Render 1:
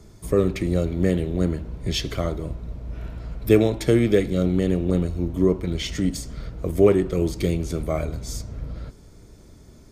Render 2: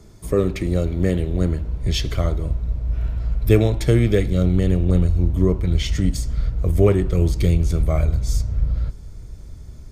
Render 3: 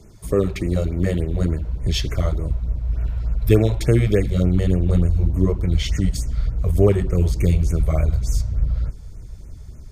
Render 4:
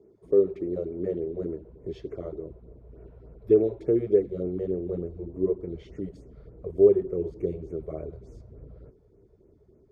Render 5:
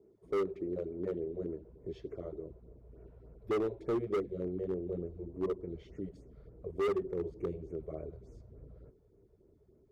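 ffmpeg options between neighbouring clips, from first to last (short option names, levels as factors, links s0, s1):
-af "asubboost=boost=4.5:cutoff=120,volume=1.12"
-af "afftfilt=real='re*(1-between(b*sr/1024,230*pow(4200/230,0.5+0.5*sin(2*PI*3.4*pts/sr))/1.41,230*pow(4200/230,0.5+0.5*sin(2*PI*3.4*pts/sr))*1.41))':imag='im*(1-between(b*sr/1024,230*pow(4200/230,0.5+0.5*sin(2*PI*3.4*pts/sr))/1.41,230*pow(4200/230,0.5+0.5*sin(2*PI*3.4*pts/sr))*1.41))':win_size=1024:overlap=0.75"
-af "bandpass=f=400:t=q:w=4.1:csg=0,volume=1.19"
-af "asoftclip=type=hard:threshold=0.0841,volume=0.473"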